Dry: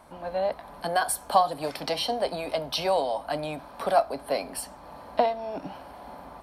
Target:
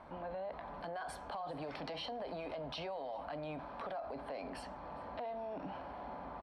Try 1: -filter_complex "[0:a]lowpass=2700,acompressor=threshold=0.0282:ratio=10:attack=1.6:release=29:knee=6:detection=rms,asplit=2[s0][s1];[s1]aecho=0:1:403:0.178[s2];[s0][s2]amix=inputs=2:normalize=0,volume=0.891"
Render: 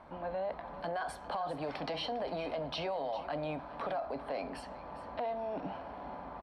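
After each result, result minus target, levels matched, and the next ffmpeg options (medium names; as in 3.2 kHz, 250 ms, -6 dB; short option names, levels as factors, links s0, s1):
echo-to-direct +11 dB; compression: peak gain reduction -6.5 dB
-filter_complex "[0:a]lowpass=2700,acompressor=threshold=0.0282:ratio=10:attack=1.6:release=29:knee=6:detection=rms,asplit=2[s0][s1];[s1]aecho=0:1:403:0.0501[s2];[s0][s2]amix=inputs=2:normalize=0,volume=0.891"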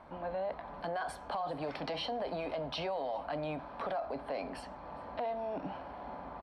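compression: peak gain reduction -6.5 dB
-filter_complex "[0:a]lowpass=2700,acompressor=threshold=0.0126:ratio=10:attack=1.6:release=29:knee=6:detection=rms,asplit=2[s0][s1];[s1]aecho=0:1:403:0.0501[s2];[s0][s2]amix=inputs=2:normalize=0,volume=0.891"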